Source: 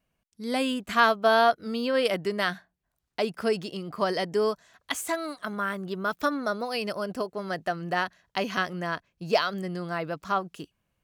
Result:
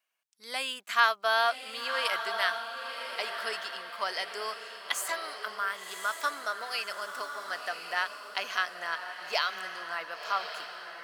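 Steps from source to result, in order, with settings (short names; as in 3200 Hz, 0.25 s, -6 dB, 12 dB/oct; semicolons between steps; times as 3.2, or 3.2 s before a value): HPF 1100 Hz 12 dB/oct; diffused feedback echo 1.079 s, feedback 44%, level -7 dB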